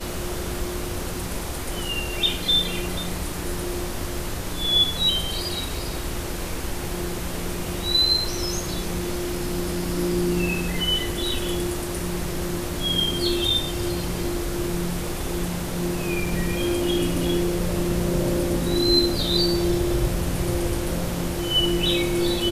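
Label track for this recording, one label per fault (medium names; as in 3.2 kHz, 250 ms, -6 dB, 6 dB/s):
16.260000	16.260000	dropout 2.7 ms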